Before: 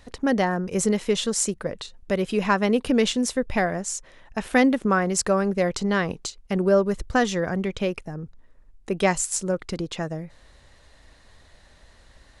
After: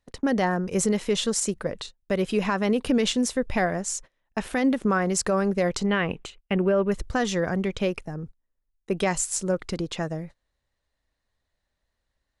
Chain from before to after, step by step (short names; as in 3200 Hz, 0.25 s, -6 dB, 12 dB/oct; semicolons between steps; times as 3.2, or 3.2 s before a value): gate -39 dBFS, range -26 dB; 5.86–6.92 resonant high shelf 3700 Hz -9.5 dB, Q 3; limiter -14 dBFS, peak gain reduction 8.5 dB